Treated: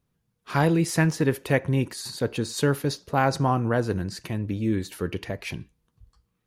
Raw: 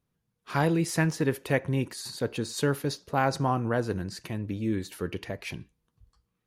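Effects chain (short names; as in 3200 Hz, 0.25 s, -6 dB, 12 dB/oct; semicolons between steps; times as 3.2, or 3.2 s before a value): low shelf 140 Hz +3 dB; gain +3 dB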